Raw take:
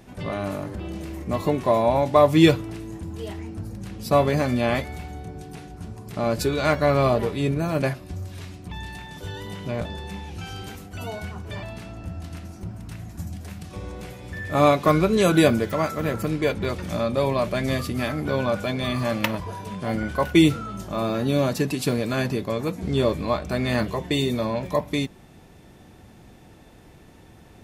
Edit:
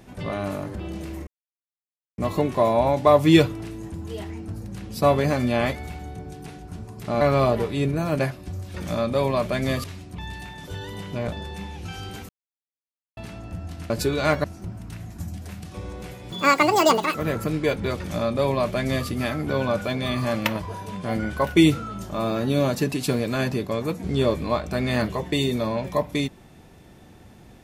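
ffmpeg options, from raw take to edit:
-filter_complex "[0:a]asplit=11[a][b][c][d][e][f][g][h][i][j][k];[a]atrim=end=1.27,asetpts=PTS-STARTPTS,afade=t=out:st=1.266:d=0.004:c=hsin,apad=pad_dur=0.91[l];[b]atrim=start=1.27:end=6.302,asetpts=PTS-STARTPTS,afade=t=in:d=0.004:c=hsin[m];[c]atrim=start=6.838:end=8.372[n];[d]atrim=start=16.758:end=17.862[o];[e]atrim=start=8.368:end=10.82,asetpts=PTS-STARTPTS,afade=t=out:st=2.448:d=0.004:c=hsin[p];[f]atrim=start=10.82:end=11.7,asetpts=PTS-STARTPTS,volume=0[q];[g]atrim=start=11.7:end=12.432,asetpts=PTS-STARTPTS,afade=t=in:d=0.004:c=hsin[r];[h]atrim=start=6.298:end=6.842[s];[i]atrim=start=12.428:end=14.304[t];[j]atrim=start=14.3:end=15.93,asetpts=PTS-STARTPTS,asetrate=85995,aresample=44100,atrim=end_sample=36863,asetpts=PTS-STARTPTS[u];[k]atrim=start=15.926[v];[l][m]concat=n=2:v=0:a=1[w];[w][n]acrossfade=d=0.004:c1=hsin:c2=hsin[x];[x][o]acrossfade=d=0.004:c1=hsin:c2=hsin[y];[p][q][r]concat=n=3:v=0:a=1[z];[y][z]acrossfade=d=0.004:c1=hsin:c2=hsin[aa];[aa][s]acrossfade=d=0.004:c1=hsin:c2=hsin[ab];[ab][t]acrossfade=d=0.004:c1=hsin:c2=hsin[ac];[ac][u]acrossfade=d=0.004:c1=hsin:c2=hsin[ad];[ad][v]acrossfade=d=0.004:c1=hsin:c2=hsin"

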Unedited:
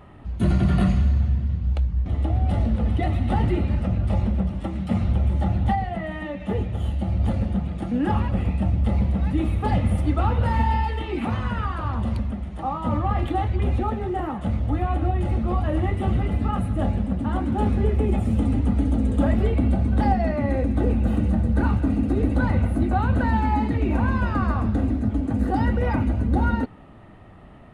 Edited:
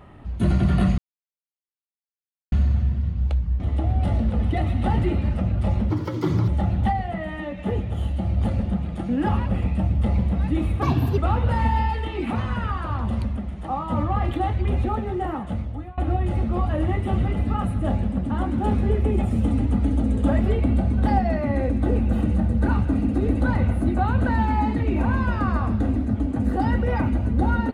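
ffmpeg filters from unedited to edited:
-filter_complex "[0:a]asplit=7[a][b][c][d][e][f][g];[a]atrim=end=0.98,asetpts=PTS-STARTPTS,afade=t=out:st=0.976:d=0.004:c=hsin,apad=pad_dur=1.54[h];[b]atrim=start=0.98:end=4.364,asetpts=PTS-STARTPTS,afade=t=in:d=0.004:c=hsin[i];[c]atrim=start=4.36:end=5.31,asetpts=PTS-STARTPTS,asetrate=71883,aresample=44100,atrim=end_sample=25702,asetpts=PTS-STARTPTS[j];[d]atrim=start=5.306:end=9.654[k];[e]atrim=start=9.65:end=10.12,asetpts=PTS-STARTPTS,asetrate=58653,aresample=44100,atrim=end_sample=15584,asetpts=PTS-STARTPTS[l];[f]atrim=start=10.116:end=14.92,asetpts=PTS-STARTPTS,afade=t=out:st=4.184:d=0.62:silence=0.0668344[m];[g]atrim=start=14.92,asetpts=PTS-STARTPTS,afade=t=in:d=0.004:c=hsin:silence=0.0668344[n];[h][i]concat=n=2:v=0:a=1[o];[o][j]acrossfade=d=0.004:c1=hsin:c2=hsin[p];[p][k]acrossfade=d=0.004:c1=hsin:c2=hsin[q];[q][l]acrossfade=d=0.004:c1=hsin:c2=hsin[r];[m][n]concat=n=2:v=0:a=1[s];[r][s]acrossfade=d=0.004:c1=hsin:c2=hsin"

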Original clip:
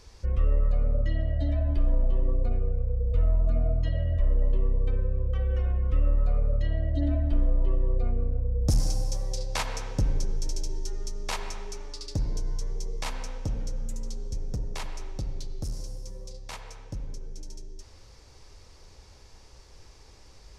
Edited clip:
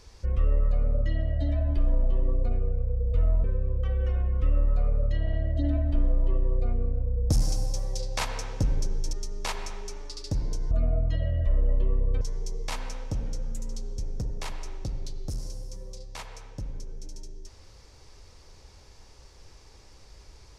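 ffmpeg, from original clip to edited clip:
-filter_complex "[0:a]asplit=7[a][b][c][d][e][f][g];[a]atrim=end=3.442[h];[b]atrim=start=4.938:end=6.772[i];[c]atrim=start=6.708:end=6.772[j];[d]atrim=start=6.708:end=10.512[k];[e]atrim=start=10.968:end=12.552[l];[f]atrim=start=3.438:end=4.942[m];[g]atrim=start=12.548[n];[h][i]acrossfade=d=0.004:c1=hsin:c2=hsin[o];[o][j]acrossfade=d=0.004:c1=hsin:c2=hsin[p];[p][k]acrossfade=d=0.004:c1=hsin:c2=hsin[q];[q][l]acrossfade=d=0.004:c1=hsin:c2=hsin[r];[r][m]acrossfade=d=0.004:c1=hsin:c2=hsin[s];[s][n]acrossfade=d=0.004:c1=hsin:c2=hsin"

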